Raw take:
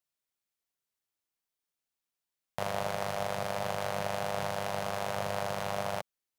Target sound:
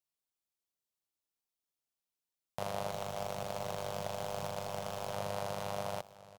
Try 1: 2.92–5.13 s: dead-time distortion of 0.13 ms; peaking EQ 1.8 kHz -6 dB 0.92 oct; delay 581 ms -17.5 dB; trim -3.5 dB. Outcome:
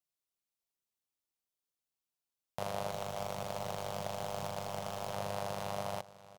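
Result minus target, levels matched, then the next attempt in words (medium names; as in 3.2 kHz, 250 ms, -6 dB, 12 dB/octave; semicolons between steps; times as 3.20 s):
echo 441 ms early
2.92–5.13 s: dead-time distortion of 0.13 ms; peaking EQ 1.8 kHz -6 dB 0.92 oct; delay 1022 ms -17.5 dB; trim -3.5 dB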